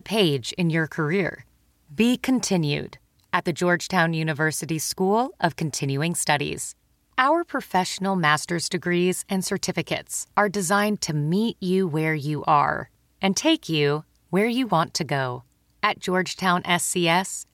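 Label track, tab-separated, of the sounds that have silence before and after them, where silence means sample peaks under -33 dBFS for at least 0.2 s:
1.980000	2.930000	sound
3.340000	6.710000	sound
7.180000	12.840000	sound
13.220000	14.000000	sound
14.330000	15.390000	sound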